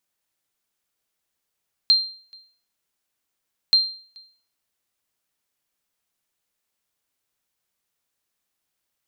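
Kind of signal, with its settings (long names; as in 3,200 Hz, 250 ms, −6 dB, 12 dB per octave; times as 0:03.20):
ping with an echo 4,170 Hz, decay 0.45 s, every 1.83 s, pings 2, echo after 0.43 s, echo −29.5 dB −9 dBFS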